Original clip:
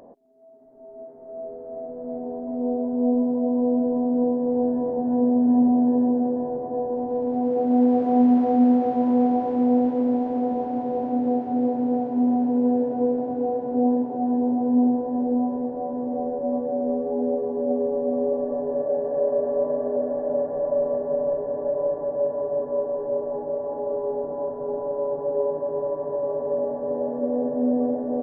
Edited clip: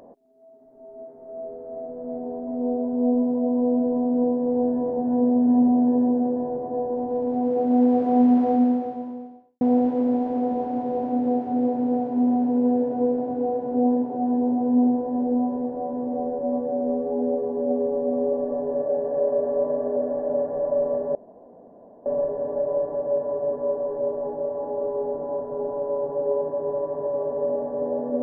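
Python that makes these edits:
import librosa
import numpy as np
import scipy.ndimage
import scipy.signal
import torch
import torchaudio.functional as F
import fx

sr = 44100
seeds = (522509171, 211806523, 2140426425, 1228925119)

y = fx.edit(x, sr, fx.fade_out_span(start_s=8.51, length_s=1.1, curve='qua'),
    fx.insert_room_tone(at_s=21.15, length_s=0.91), tone=tone)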